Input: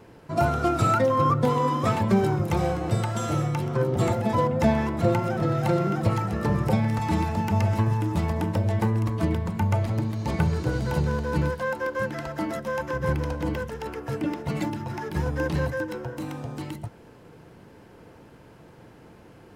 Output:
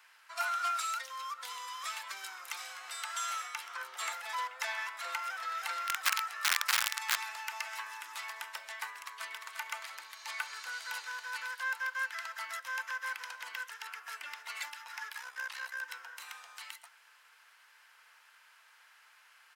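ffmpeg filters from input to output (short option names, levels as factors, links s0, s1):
-filter_complex "[0:a]asettb=1/sr,asplit=3[s0][s1][s2];[s0]atrim=end=0.794[s3];[s1]atrim=start=0.79:end=3.05,asetpts=PTS-STARTPTS,afade=t=in:d=0.004:c=qsin,afade=t=out:st=2.256:d=0.004:c=qsin,acrossover=split=390|3000[s4][s5][s6];[s5]acompressor=threshold=0.0251:ratio=6:attack=3.2:release=140:knee=2.83:detection=peak[s7];[s4][s7][s6]amix=inputs=3:normalize=0[s8];[s2]atrim=start=3.046[s9];[s3][s8]acrossfade=d=0.004:c1=hsin:c2=qsin[s10];[s10][s9]acrossfade=d=0.004:c1=qsin:c2=hsin,asplit=3[s11][s12][s13];[s11]afade=t=out:st=5.87:d=0.02[s14];[s12]aeval=exprs='(mod(6.68*val(0)+1,2)-1)/6.68':c=same,afade=t=in:st=5.87:d=0.02,afade=t=out:st=7.15:d=0.02[s15];[s13]afade=t=in:st=7.15:d=0.02[s16];[s14][s15][s16]amix=inputs=3:normalize=0,asplit=2[s17][s18];[s18]afade=t=in:st=8.99:d=0.01,afade=t=out:st=9.5:d=0.01,aecho=0:1:350|700|1050|1400:0.530884|0.159265|0.0477796|0.0143339[s19];[s17][s19]amix=inputs=2:normalize=0,asplit=3[s20][s21][s22];[s20]afade=t=out:st=15.12:d=0.02[s23];[s21]tremolo=f=64:d=0.667,afade=t=in:st=15.12:d=0.02,afade=t=out:st=15.82:d=0.02[s24];[s22]afade=t=in:st=15.82:d=0.02[s25];[s23][s24][s25]amix=inputs=3:normalize=0,highpass=f=1300:w=0.5412,highpass=f=1300:w=1.3066"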